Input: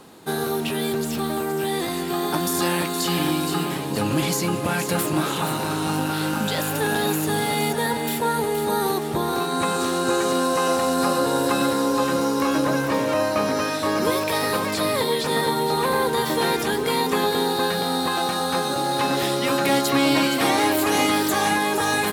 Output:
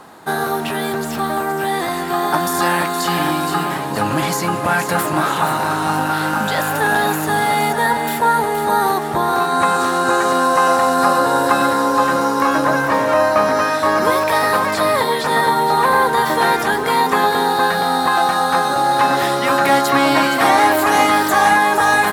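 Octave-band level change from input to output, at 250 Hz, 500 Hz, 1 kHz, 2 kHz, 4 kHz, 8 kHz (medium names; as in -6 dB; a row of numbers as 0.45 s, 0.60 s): +1.5 dB, +4.5 dB, +10.0 dB, +9.0 dB, +1.5 dB, +1.5 dB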